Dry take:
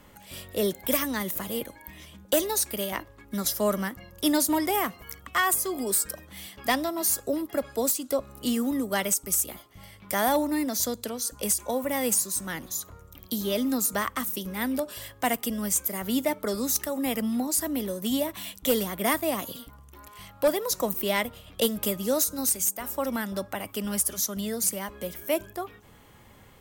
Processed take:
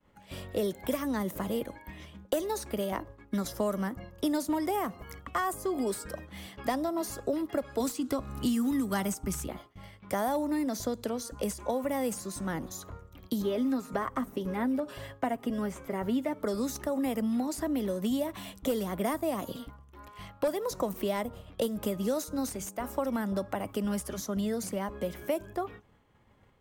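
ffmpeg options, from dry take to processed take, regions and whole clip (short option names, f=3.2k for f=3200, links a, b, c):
-filter_complex "[0:a]asettb=1/sr,asplit=3[a][b][c];[a]atrim=end=7.804[d];[b]atrim=start=7.8:end=9.48,asetpts=PTS-STARTPTS,afade=t=in:d=0.004:c=qsin,afade=t=out:st=1.676:d=0.004:c=qsin,equalizer=f=540:t=o:w=1:g=-12.5,acontrast=87,bandreject=f=156.9:t=h:w=4,bandreject=f=313.8:t=h:w=4,bandreject=f=470.7:t=h:w=4,bandreject=f=627.6:t=h:w=4,bandreject=f=784.5:t=h:w=4[e];[c]atrim=start=9.476[f];[d][e]acrossfade=d=0.004:c1=hsin:c2=qsin[g];[g][f]acrossfade=d=0.004:c1=qsin:c2=hsin,asettb=1/sr,asplit=3[h][i][j];[h]atrim=end=13.424[k];[i]atrim=start=13.42:end=16.42,asetpts=PTS-STARTPTS,afade=t=in:d=0.004:c=qsin,afade=t=out:st=2.996:d=0.004:c=qsin,acrossover=split=2800[l][m];[m]acompressor=threshold=-44dB:ratio=4:attack=1:release=60[n];[l][n]amix=inputs=2:normalize=0,aecho=1:1:7.4:0.4,atrim=end_sample=132300[o];[j]atrim=start=16.416[p];[k][o]acrossfade=d=0.004:c1=hsin:c2=qsin[q];[q][p]acrossfade=d=0.004:c1=qsin:c2=hsin,agate=range=-33dB:threshold=-43dB:ratio=3:detection=peak,aemphasis=mode=reproduction:type=75kf,acrossover=split=1300|5600[r][s][t];[r]acompressor=threshold=-32dB:ratio=4[u];[s]acompressor=threshold=-52dB:ratio=4[v];[t]acompressor=threshold=-45dB:ratio=4[w];[u][v][w]amix=inputs=3:normalize=0,volume=4dB"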